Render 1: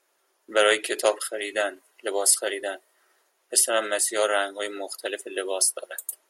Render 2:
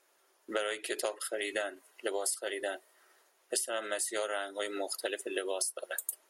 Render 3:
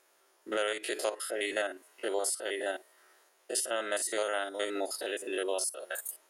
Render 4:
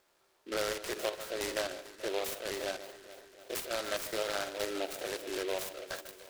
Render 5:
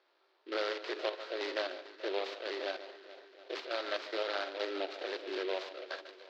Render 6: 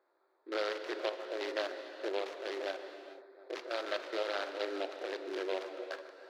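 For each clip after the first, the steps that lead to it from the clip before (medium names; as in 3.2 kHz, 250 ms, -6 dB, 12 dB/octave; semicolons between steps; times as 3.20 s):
compression 12:1, threshold -30 dBFS, peak gain reduction 16 dB
spectrogram pixelated in time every 50 ms; trim +3.5 dB
steep low-pass 8.7 kHz 36 dB/octave; echo whose repeats swap between lows and highs 144 ms, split 1.7 kHz, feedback 79%, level -12.5 dB; delay time shaken by noise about 2.5 kHz, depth 0.094 ms; trim -2.5 dB
elliptic band-pass 320–4400 Hz, stop band 40 dB
local Wiener filter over 15 samples; gated-style reverb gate 470 ms flat, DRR 8.5 dB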